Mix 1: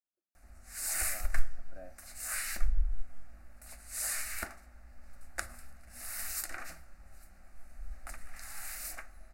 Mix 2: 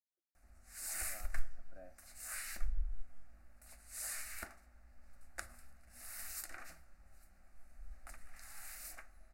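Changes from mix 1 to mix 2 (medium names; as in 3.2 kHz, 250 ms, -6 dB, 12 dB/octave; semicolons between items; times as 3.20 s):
speech -6.0 dB; background -8.0 dB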